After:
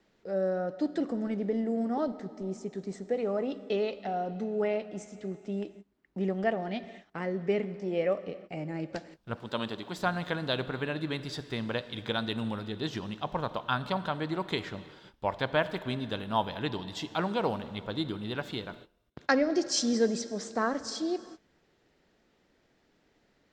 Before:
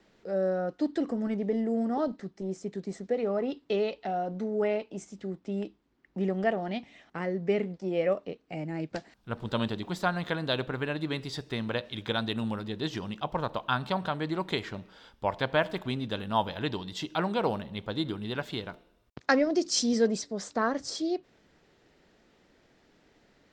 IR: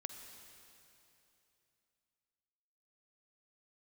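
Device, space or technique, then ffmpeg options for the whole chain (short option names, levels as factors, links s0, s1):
keyed gated reverb: -filter_complex "[0:a]asplit=3[s0][s1][s2];[1:a]atrim=start_sample=2205[s3];[s1][s3]afir=irnorm=-1:irlink=0[s4];[s2]apad=whole_len=1037315[s5];[s4][s5]sidechaingate=range=0.0355:threshold=0.00251:ratio=16:detection=peak,volume=0.944[s6];[s0][s6]amix=inputs=2:normalize=0,asettb=1/sr,asplit=3[s7][s8][s9];[s7]atrim=end=9.364[s10];[s8]atrim=start=9.36:end=9.98,asetpts=PTS-STARTPTS,afade=t=in:d=0.004:c=qsin,afade=t=out:st=0.616:d=0.004:c=qsin,highpass=f=290:p=1[s11];[s9]atrim=start=9.976[s12];[s10][s11]acrossfade=d=0.004:c1=hsin:c2=qsin[s13];[s13][s12]acrossfade=d=0.004:c1=qsin:c2=hsin,volume=0.531"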